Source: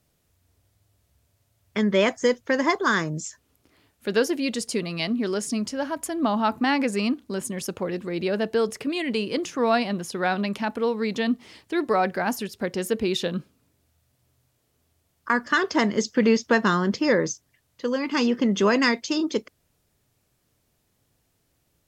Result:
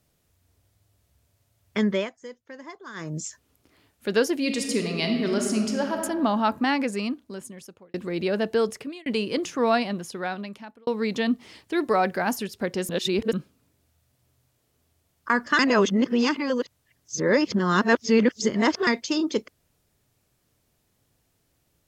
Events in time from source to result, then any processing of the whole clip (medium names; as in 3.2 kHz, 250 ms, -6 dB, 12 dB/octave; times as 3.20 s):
1.85–3.19 s: dip -19.5 dB, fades 0.25 s
4.36–6.00 s: reverb throw, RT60 1.7 s, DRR 3 dB
6.52–7.94 s: fade out
8.65–9.06 s: fade out
9.68–10.87 s: fade out
11.73–12.34 s: treble shelf 8.8 kHz +5 dB
12.89–13.33 s: reverse
15.59–18.87 s: reverse